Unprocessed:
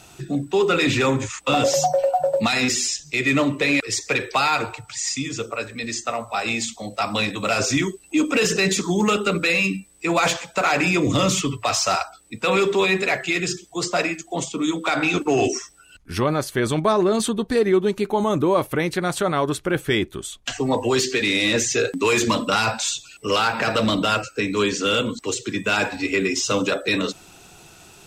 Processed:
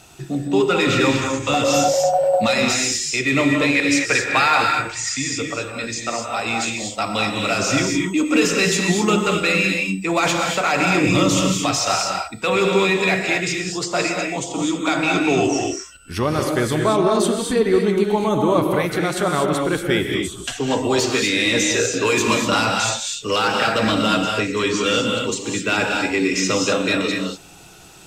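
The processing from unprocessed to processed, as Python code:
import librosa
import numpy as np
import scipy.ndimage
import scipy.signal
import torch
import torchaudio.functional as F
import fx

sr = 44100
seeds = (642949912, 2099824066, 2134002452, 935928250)

y = fx.peak_eq(x, sr, hz=1700.0, db=8.0, octaves=0.71, at=(3.75, 5.29))
y = fx.rev_gated(y, sr, seeds[0], gate_ms=270, shape='rising', drr_db=1.5)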